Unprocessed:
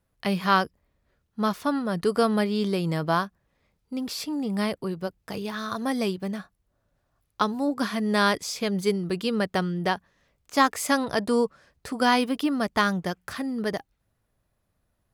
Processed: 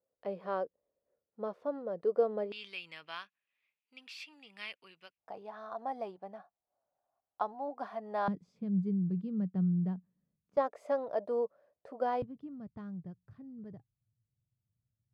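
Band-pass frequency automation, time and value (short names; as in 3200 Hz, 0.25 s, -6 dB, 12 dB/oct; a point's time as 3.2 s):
band-pass, Q 5
520 Hz
from 2.52 s 2600 Hz
from 5.18 s 740 Hz
from 8.28 s 180 Hz
from 10.57 s 590 Hz
from 12.22 s 120 Hz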